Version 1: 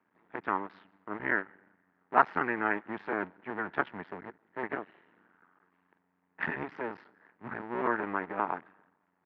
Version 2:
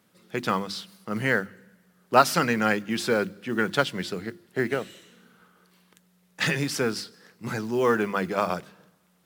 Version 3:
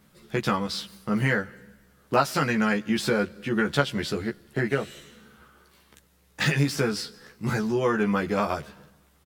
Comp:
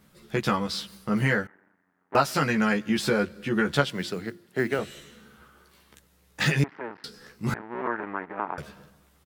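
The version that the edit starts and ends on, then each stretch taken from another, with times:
3
0:01.47–0:02.15: punch in from 1
0:03.90–0:04.79: punch in from 2
0:06.64–0:07.04: punch in from 1
0:07.54–0:08.58: punch in from 1

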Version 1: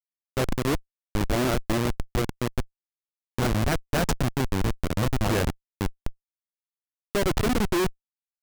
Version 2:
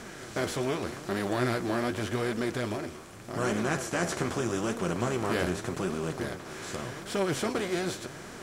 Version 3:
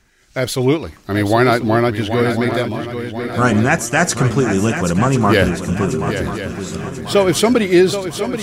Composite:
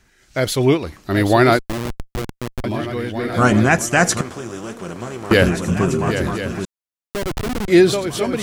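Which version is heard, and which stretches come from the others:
3
0:01.59–0:02.64: punch in from 1
0:04.21–0:05.31: punch in from 2
0:06.65–0:07.68: punch in from 1

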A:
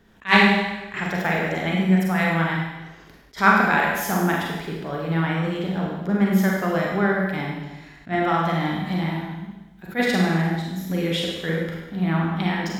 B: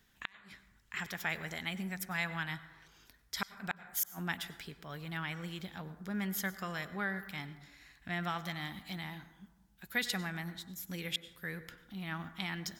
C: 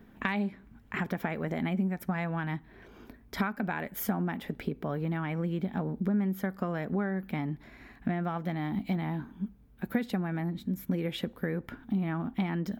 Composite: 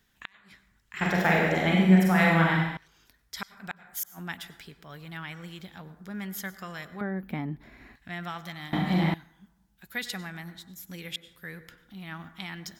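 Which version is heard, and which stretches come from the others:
B
0:01.01–0:02.77: punch in from A
0:07.01–0:07.96: punch in from C
0:08.73–0:09.14: punch in from A

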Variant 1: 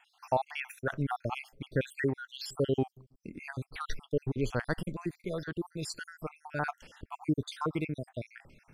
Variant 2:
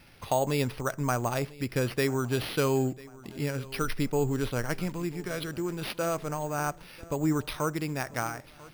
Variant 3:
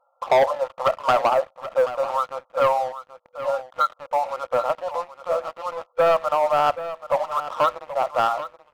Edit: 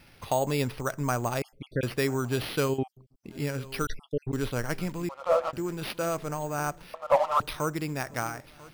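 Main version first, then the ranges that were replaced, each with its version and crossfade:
2
0:01.42–0:01.83: punch in from 1
0:02.72–0:03.31: punch in from 1, crossfade 0.16 s
0:03.87–0:04.33: punch in from 1
0:05.09–0:05.53: punch in from 3
0:06.94–0:07.40: punch in from 3

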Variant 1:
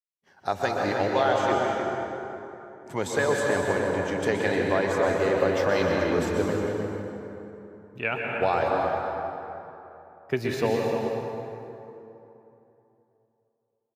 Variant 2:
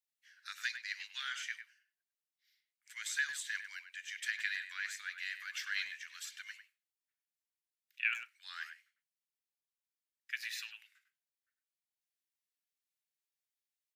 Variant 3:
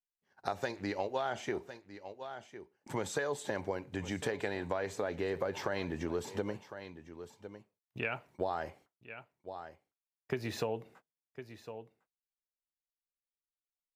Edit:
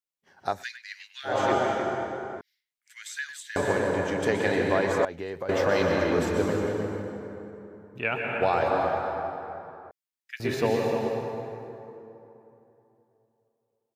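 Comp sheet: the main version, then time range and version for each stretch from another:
1
0:00.56–0:01.31: punch in from 2, crossfade 0.16 s
0:02.41–0:03.56: punch in from 2
0:05.05–0:05.49: punch in from 3
0:09.91–0:10.40: punch in from 2

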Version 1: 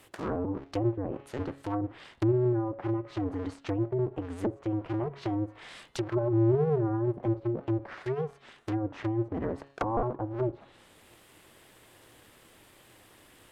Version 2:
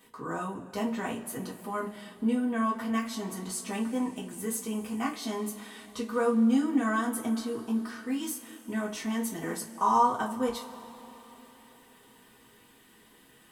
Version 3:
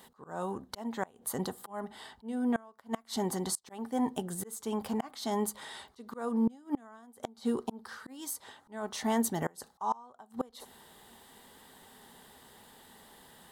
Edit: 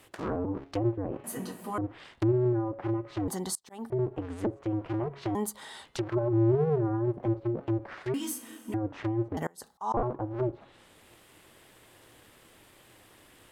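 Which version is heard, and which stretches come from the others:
1
0:01.24–0:01.78: punch in from 2
0:03.28–0:03.90: punch in from 3
0:05.35–0:05.85: punch in from 3
0:08.14–0:08.74: punch in from 2
0:09.37–0:09.94: punch in from 3

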